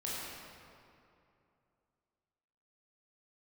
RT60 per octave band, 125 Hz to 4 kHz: 3.0, 2.8, 2.7, 2.6, 2.1, 1.6 s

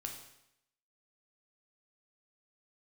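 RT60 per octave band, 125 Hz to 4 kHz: 0.80, 0.80, 0.80, 0.80, 0.80, 0.75 s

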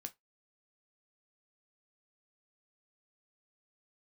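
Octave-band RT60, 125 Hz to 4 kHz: 0.15, 0.15, 0.15, 0.15, 0.15, 0.15 s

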